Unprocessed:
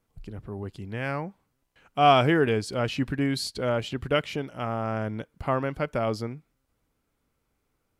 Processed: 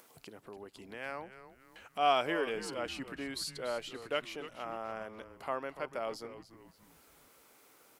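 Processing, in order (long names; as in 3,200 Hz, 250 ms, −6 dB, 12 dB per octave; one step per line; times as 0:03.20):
high-pass filter 390 Hz 12 dB per octave
high-shelf EQ 6,200 Hz +6 dB
upward compression, threshold −33 dBFS
echo with shifted repeats 288 ms, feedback 40%, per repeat −130 Hz, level −13 dB
level −9 dB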